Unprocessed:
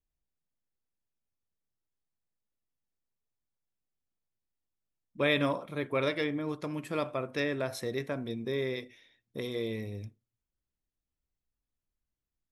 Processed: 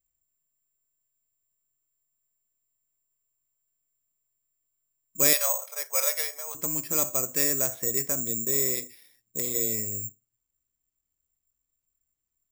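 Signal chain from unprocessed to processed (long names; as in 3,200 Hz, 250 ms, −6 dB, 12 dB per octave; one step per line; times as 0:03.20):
0:05.33–0:06.55: Butterworth high-pass 520 Hz 48 dB per octave
bad sample-rate conversion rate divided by 6×, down filtered, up zero stuff
level −1 dB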